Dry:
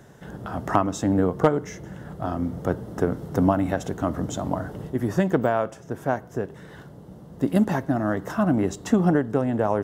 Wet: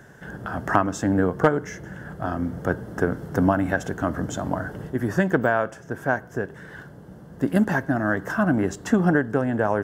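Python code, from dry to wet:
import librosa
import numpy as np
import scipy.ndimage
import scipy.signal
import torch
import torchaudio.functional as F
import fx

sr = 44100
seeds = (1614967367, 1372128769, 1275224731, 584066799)

y = fx.peak_eq(x, sr, hz=1600.0, db=11.0, octaves=0.35)
y = fx.notch(y, sr, hz=3800.0, q=14.0)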